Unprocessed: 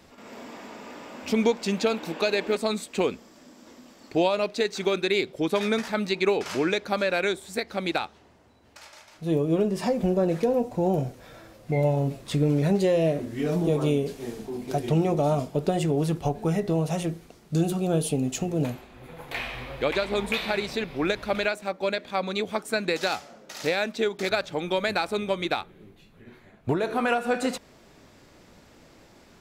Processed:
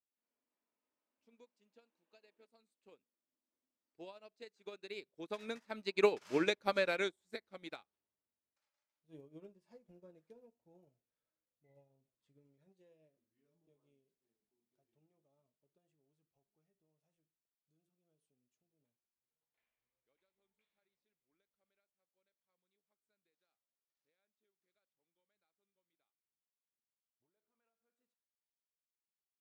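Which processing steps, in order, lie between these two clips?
source passing by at 0:06.59, 14 m/s, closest 12 metres
low-shelf EQ 130 Hz −7 dB
notch filter 730 Hz, Q 12
expander for the loud parts 2.5 to 1, over −43 dBFS
level −1.5 dB

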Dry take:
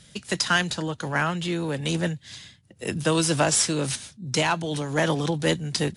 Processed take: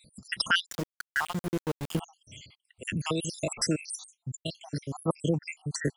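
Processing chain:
time-frequency cells dropped at random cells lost 78%
0:00.66–0:02.00: centre clipping without the shift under −32.5 dBFS
0:02.96–0:03.58: downward compressor, threshold −26 dBFS, peak gain reduction 7.5 dB

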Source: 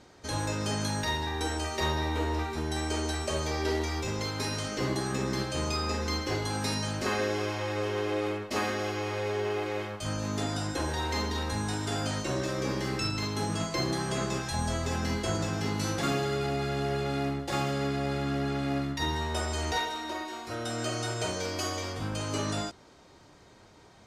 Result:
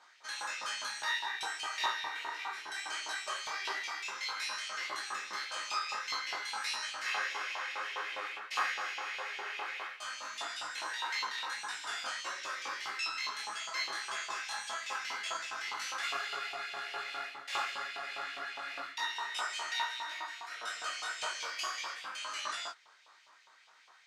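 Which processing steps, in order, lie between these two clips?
high-shelf EQ 9,000 Hz −8 dB
auto-filter high-pass saw up 4.9 Hz 960–2,900 Hz
micro pitch shift up and down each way 56 cents

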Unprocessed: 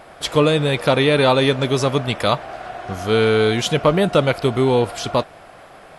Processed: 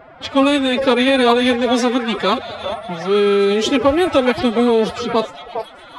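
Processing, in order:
low-pass that shuts in the quiet parts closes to 2,100 Hz, open at −11.5 dBFS
echo through a band-pass that steps 407 ms, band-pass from 570 Hz, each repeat 1.4 octaves, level −4.5 dB
phase-vocoder pitch shift with formants kept +10.5 semitones
level +1.5 dB

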